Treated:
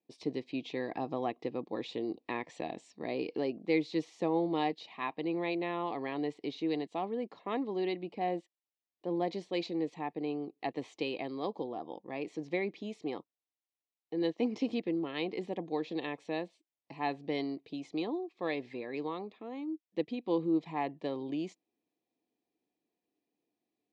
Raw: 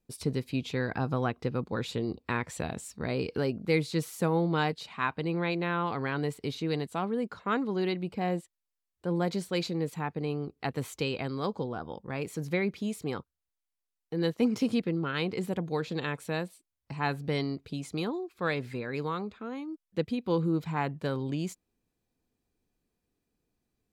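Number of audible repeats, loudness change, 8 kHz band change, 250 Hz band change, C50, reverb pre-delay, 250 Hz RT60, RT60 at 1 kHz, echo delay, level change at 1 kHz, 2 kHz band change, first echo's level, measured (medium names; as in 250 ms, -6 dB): no echo, -4.0 dB, under -15 dB, -3.0 dB, no reverb, no reverb, no reverb, no reverb, no echo, -3.0 dB, -7.0 dB, no echo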